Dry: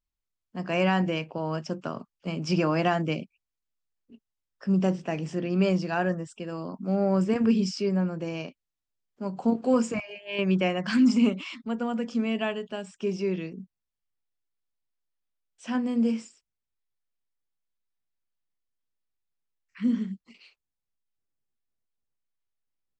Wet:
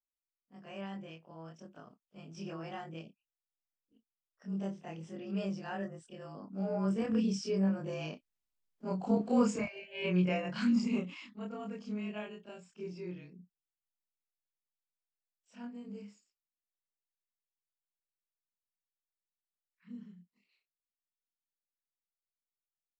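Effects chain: short-time reversal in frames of 64 ms; Doppler pass-by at 8.81, 15 m/s, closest 17 m

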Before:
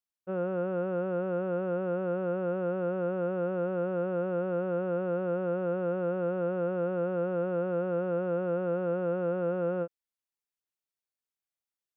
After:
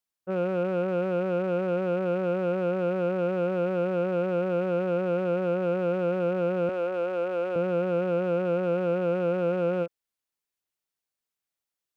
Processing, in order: rattling part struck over -45 dBFS, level -42 dBFS; 6.69–7.56 HPF 400 Hz 12 dB/oct; gain +4 dB

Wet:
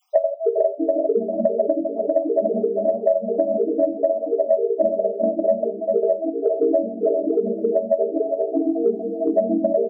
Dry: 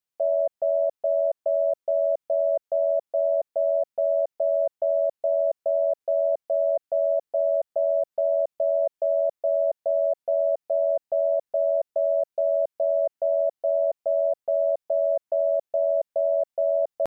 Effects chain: random spectral dropouts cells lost 81%; comb 6.5 ms, depth 96%; reverb RT60 0.70 s, pre-delay 36 ms, DRR 9 dB; granular stretch 0.58×, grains 81 ms; dynamic EQ 650 Hz, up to +5 dB, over -33 dBFS, Q 2.5; echoes that change speed 0.239 s, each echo -6 st, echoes 3, each echo -6 dB; low shelf 360 Hz +7.5 dB; echo 0.397 s -9.5 dB; harmonic-percussive split percussive -11 dB; three-band squash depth 100%; gain +2.5 dB

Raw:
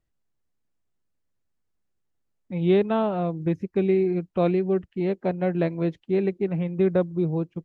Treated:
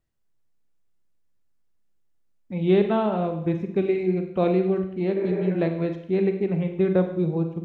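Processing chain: Schroeder reverb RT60 0.74 s, combs from 33 ms, DRR 6 dB; spectral repair 5.18–5.48, 270–2500 Hz before

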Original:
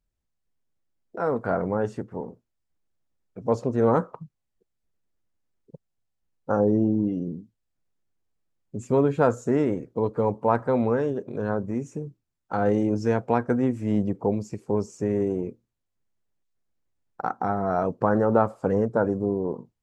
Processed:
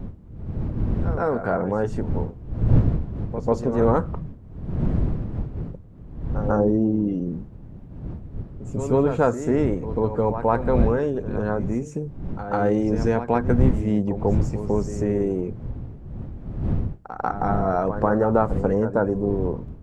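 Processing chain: wind noise 130 Hz -29 dBFS; in parallel at 0 dB: compressor, threshold -29 dBFS, peak gain reduction 17 dB; on the sum: reverse echo 0.143 s -10.5 dB; gain -1 dB

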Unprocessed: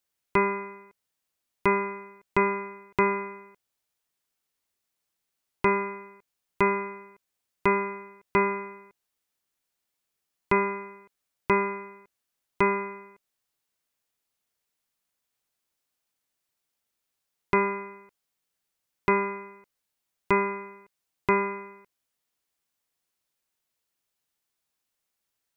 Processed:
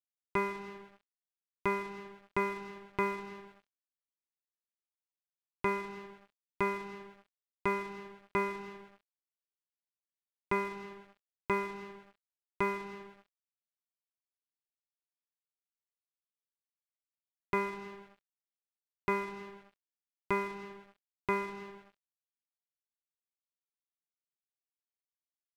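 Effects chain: digital reverb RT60 1.7 s, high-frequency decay 0.65×, pre-delay 0.115 s, DRR 11 dB; crossover distortion -40.5 dBFS; gain -8 dB

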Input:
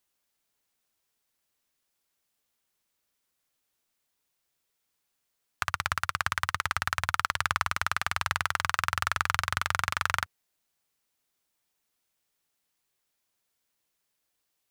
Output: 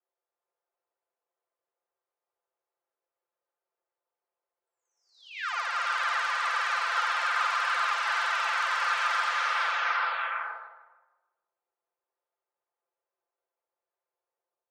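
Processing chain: spectral delay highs early, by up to 0.946 s; low-pass opened by the level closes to 860 Hz, open at -30 dBFS; elliptic high-pass 390 Hz, stop band 40 dB; high shelf 5900 Hz +8.5 dB; vibrato 0.59 Hz 11 cents; air absorption 150 m; tape echo 0.152 s, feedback 44%, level -8 dB, low-pass 2000 Hz; non-linear reverb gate 0.49 s rising, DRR 2 dB; backwards sustainer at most 110 dB/s; gain +4 dB

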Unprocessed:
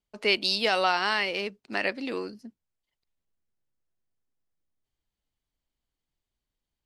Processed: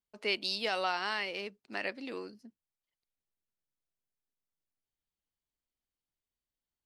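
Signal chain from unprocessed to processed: low shelf 110 Hz -5 dB; gain -8 dB

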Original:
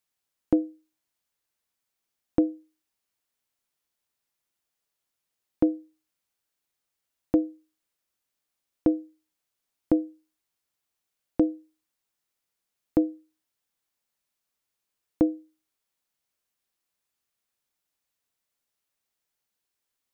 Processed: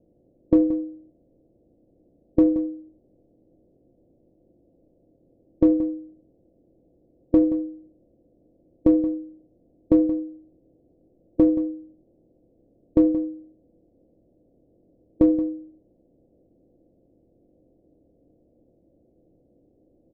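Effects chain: per-bin compression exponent 0.6; steep low-pass 620 Hz 48 dB/oct; dynamic EQ 220 Hz, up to -5 dB, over -34 dBFS, Q 1.1; in parallel at -8 dB: hard clip -20 dBFS, distortion -11 dB; on the sum: echo 0.176 s -13.5 dB; on a send at -10 dB: reverb RT60 0.45 s, pre-delay 17 ms; on the sum: gain +3.5 dB

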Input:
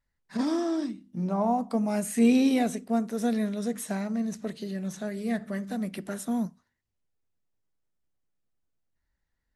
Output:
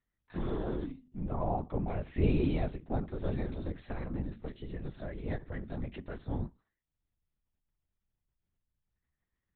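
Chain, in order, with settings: LPC vocoder at 8 kHz whisper; gain -6.5 dB

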